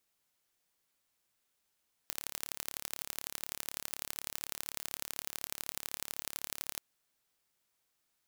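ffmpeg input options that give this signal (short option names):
-f lavfi -i "aevalsrc='0.376*eq(mod(n,1228),0)*(0.5+0.5*eq(mod(n,3684),0))':d=4.68:s=44100"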